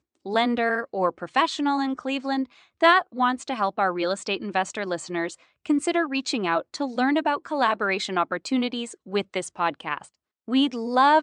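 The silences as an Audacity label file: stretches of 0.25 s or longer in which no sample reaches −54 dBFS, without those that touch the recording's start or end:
10.150000	10.480000	silence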